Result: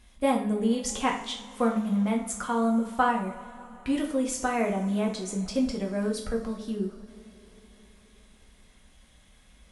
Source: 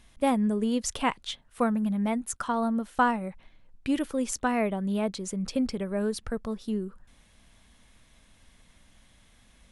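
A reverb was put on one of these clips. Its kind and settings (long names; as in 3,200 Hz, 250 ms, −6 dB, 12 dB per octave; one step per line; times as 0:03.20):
coupled-rooms reverb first 0.44 s, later 4.3 s, from −22 dB, DRR −0.5 dB
level −2.5 dB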